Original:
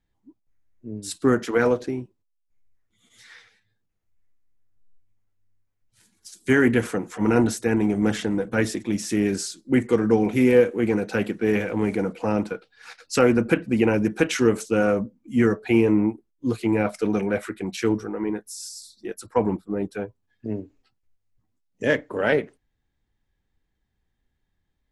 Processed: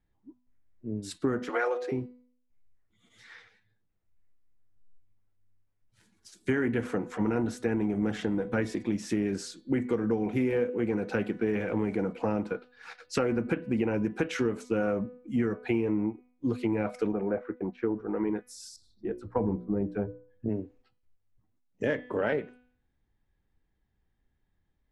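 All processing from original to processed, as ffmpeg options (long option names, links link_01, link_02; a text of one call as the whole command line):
ffmpeg -i in.wav -filter_complex "[0:a]asettb=1/sr,asplit=3[link_01][link_02][link_03];[link_01]atrim=end=1.494[link_04];[link_02]atrim=start=1.49:end=1.92,asetpts=PTS-STARTPTS,afade=type=in:duration=0.004:curve=qsin,afade=type=out:start_time=0.426:duration=0.004:curve=qsin,highpass=frequency=490:width=0.5412,highpass=frequency=490:width=1.3066,aecho=1:1:5.6:0.87,atrim=end_sample=18963[link_05];[link_03]atrim=start=1.916[link_06];[link_04][link_05]acrossfade=duration=0.004:curve1=hsin:curve2=qsin[link_07];[link_07][link_06]acrossfade=duration=0.004:curve1=qsin:curve2=hsin,asettb=1/sr,asplit=3[link_08][link_09][link_10];[link_08]atrim=end=17.124[link_11];[link_09]atrim=start=17.12:end=18.09,asetpts=PTS-STARTPTS,afade=type=in:duration=0.004:curve=qsin,afade=type=out:start_time=0.966:duration=0.004:curve=qsin,agate=range=-33dB:threshold=-34dB:ratio=3:release=100:detection=peak,lowpass=1100,equalizer=frequency=110:width=0.65:gain=-7.5[link_12];[link_10]atrim=start=18.086[link_13];[link_11][link_12]acrossfade=duration=0.004:curve1=hsin:curve2=qsin[link_14];[link_14][link_13]acrossfade=duration=0.004:curve1=qsin:curve2=hsin,asettb=1/sr,asplit=3[link_15][link_16][link_17];[link_15]atrim=end=18.764[link_18];[link_16]atrim=start=18.76:end=20.49,asetpts=PTS-STARTPTS,afade=type=in:duration=0.004:curve=qsin,afade=type=out:start_time=1.726:duration=0.004:curve=qsin,lowpass=frequency=1000:poles=1,lowshelf=frequency=180:gain=9,bandreject=frequency=60:width_type=h:width=6,bandreject=frequency=120:width_type=h:width=6,bandreject=frequency=180:width_type=h:width=6,bandreject=frequency=240:width_type=h:width=6,bandreject=frequency=300:width_type=h:width=6,bandreject=frequency=360:width_type=h:width=6,bandreject=frequency=420:width_type=h:width=6,bandreject=frequency=480:width_type=h:width=6,bandreject=frequency=540:width_type=h:width=6,bandreject=frequency=600:width_type=h:width=6[link_19];[link_17]atrim=start=20.486[link_20];[link_18][link_19]acrossfade=duration=0.004:curve1=hsin:curve2=qsin[link_21];[link_21][link_20]acrossfade=duration=0.004:curve1=qsin:curve2=hsin,lowpass=frequency=2200:poles=1,bandreject=frequency=248.1:width_type=h:width=4,bandreject=frequency=496.2:width_type=h:width=4,bandreject=frequency=744.3:width_type=h:width=4,bandreject=frequency=992.4:width_type=h:width=4,bandreject=frequency=1240.5:width_type=h:width=4,bandreject=frequency=1488.6:width_type=h:width=4,bandreject=frequency=1736.7:width_type=h:width=4,bandreject=frequency=1984.8:width_type=h:width=4,bandreject=frequency=2232.9:width_type=h:width=4,bandreject=frequency=2481:width_type=h:width=4,bandreject=frequency=2729.1:width_type=h:width=4,bandreject=frequency=2977.2:width_type=h:width=4,bandreject=frequency=3225.3:width_type=h:width=4,bandreject=frequency=3473.4:width_type=h:width=4,bandreject=frequency=3721.5:width_type=h:width=4,bandreject=frequency=3969.6:width_type=h:width=4,bandreject=frequency=4217.7:width_type=h:width=4,bandreject=frequency=4465.8:width_type=h:width=4,bandreject=frequency=4713.9:width_type=h:width=4,acompressor=threshold=-25dB:ratio=5" out.wav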